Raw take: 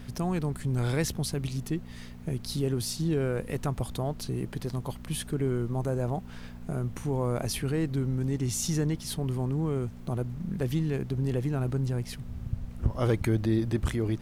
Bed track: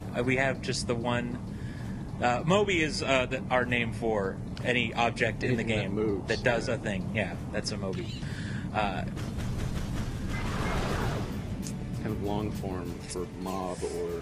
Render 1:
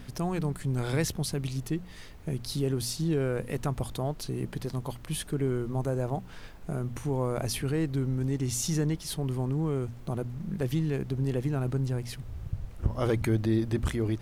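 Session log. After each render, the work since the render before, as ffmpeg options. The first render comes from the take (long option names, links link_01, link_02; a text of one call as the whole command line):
ffmpeg -i in.wav -af "bandreject=frequency=60:width_type=h:width=4,bandreject=frequency=120:width_type=h:width=4,bandreject=frequency=180:width_type=h:width=4,bandreject=frequency=240:width_type=h:width=4" out.wav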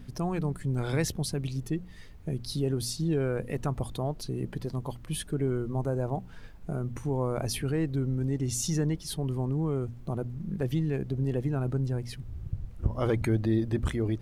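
ffmpeg -i in.wav -af "afftdn=noise_reduction=8:noise_floor=-45" out.wav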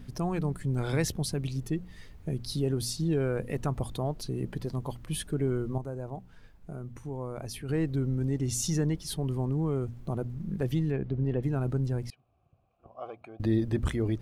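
ffmpeg -i in.wav -filter_complex "[0:a]asplit=3[link_01][link_02][link_03];[link_01]afade=type=out:start_time=10.91:duration=0.02[link_04];[link_02]lowpass=2900,afade=type=in:start_time=10.91:duration=0.02,afade=type=out:start_time=11.42:duration=0.02[link_05];[link_03]afade=type=in:start_time=11.42:duration=0.02[link_06];[link_04][link_05][link_06]amix=inputs=3:normalize=0,asettb=1/sr,asplit=3[link_07][link_08][link_09];[link_07]atrim=end=12.104[link_10];[link_08]atrim=start=12.1:end=13.4,asetpts=PTS-STARTPTS,afade=type=in:duration=0.004:curve=qsin,afade=type=out:start_time=1.296:duration=0.004:curve=qsin,asplit=3[link_11][link_12][link_13];[link_11]bandpass=frequency=730:width_type=q:width=8,volume=0dB[link_14];[link_12]bandpass=frequency=1090:width_type=q:width=8,volume=-6dB[link_15];[link_13]bandpass=frequency=2440:width_type=q:width=8,volume=-9dB[link_16];[link_14][link_15][link_16]amix=inputs=3:normalize=0[link_17];[link_09]atrim=start=13.396[link_18];[link_10][link_17]acrossfade=duration=0.004:curve1=hsin:curve2=qsin[link_19];[link_19][link_18]acrossfade=duration=0.004:curve1=qsin:curve2=hsin,asplit=3[link_20][link_21][link_22];[link_20]atrim=end=5.782[link_23];[link_21]atrim=start=5.778:end=7.692,asetpts=PTS-STARTPTS,volume=-7.5dB[link_24];[link_22]atrim=start=7.688[link_25];[link_23][link_24]acrossfade=duration=0.004:curve1=hsin:curve2=hsin[link_26];[link_26][link_25]acrossfade=duration=0.004:curve1=hsin:curve2=hsin" out.wav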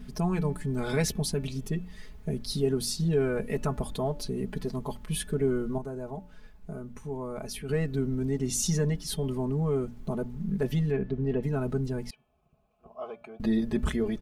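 ffmpeg -i in.wav -af "aecho=1:1:4.7:0.86,bandreject=frequency=289.7:width_type=h:width=4,bandreject=frequency=579.4:width_type=h:width=4,bandreject=frequency=869.1:width_type=h:width=4,bandreject=frequency=1158.8:width_type=h:width=4,bandreject=frequency=1448.5:width_type=h:width=4,bandreject=frequency=1738.2:width_type=h:width=4,bandreject=frequency=2027.9:width_type=h:width=4,bandreject=frequency=2317.6:width_type=h:width=4,bandreject=frequency=2607.3:width_type=h:width=4,bandreject=frequency=2897:width_type=h:width=4,bandreject=frequency=3186.7:width_type=h:width=4,bandreject=frequency=3476.4:width_type=h:width=4" out.wav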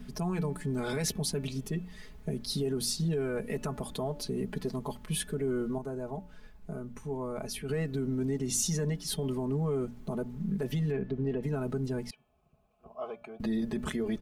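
ffmpeg -i in.wav -filter_complex "[0:a]acrossover=split=120|6500[link_01][link_02][link_03];[link_01]acompressor=threshold=-45dB:ratio=6[link_04];[link_02]alimiter=level_in=0.5dB:limit=-24dB:level=0:latency=1:release=66,volume=-0.5dB[link_05];[link_04][link_05][link_03]amix=inputs=3:normalize=0" out.wav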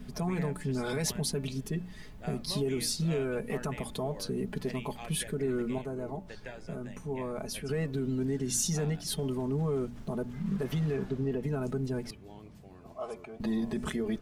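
ffmpeg -i in.wav -i bed.wav -filter_complex "[1:a]volume=-18.5dB[link_01];[0:a][link_01]amix=inputs=2:normalize=0" out.wav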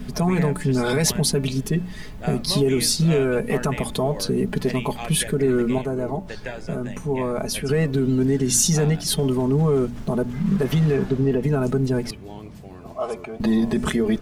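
ffmpeg -i in.wav -af "volume=11.5dB" out.wav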